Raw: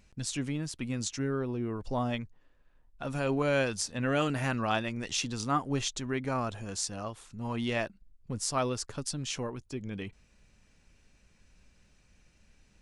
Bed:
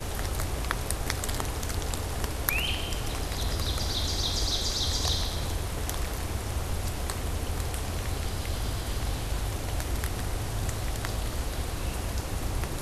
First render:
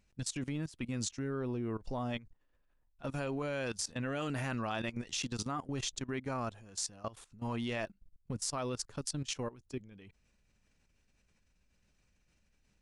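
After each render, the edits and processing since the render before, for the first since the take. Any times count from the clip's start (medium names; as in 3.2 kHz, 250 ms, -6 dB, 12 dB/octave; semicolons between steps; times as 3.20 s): level held to a coarse grid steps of 18 dB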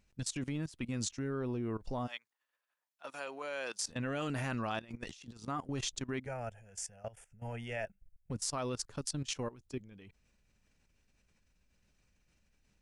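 2.06–3.82 s: high-pass 1.3 kHz -> 470 Hz; 4.79–5.48 s: compressor with a negative ratio -46 dBFS, ratio -0.5; 6.26–8.31 s: static phaser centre 1.1 kHz, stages 6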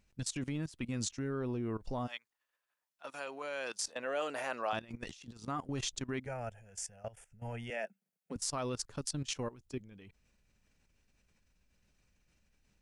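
3.88–4.73 s: resonant high-pass 550 Hz, resonance Q 1.8; 7.70–8.36 s: steep high-pass 180 Hz 48 dB/octave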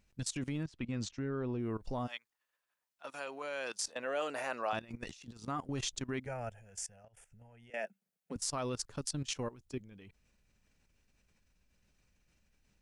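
0.63–1.59 s: distance through air 110 m; 4.30–5.25 s: band-stop 3.2 kHz; 6.86–7.74 s: compression 20:1, threshold -54 dBFS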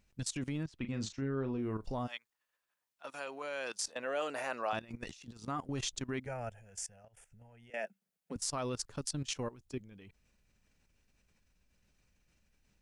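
0.78–1.95 s: doubling 37 ms -9.5 dB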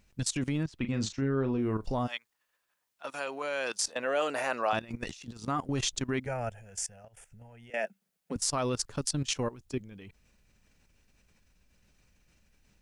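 trim +6.5 dB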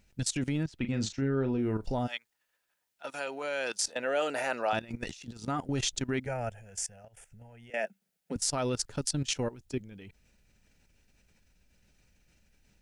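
band-stop 1.1 kHz, Q 5.2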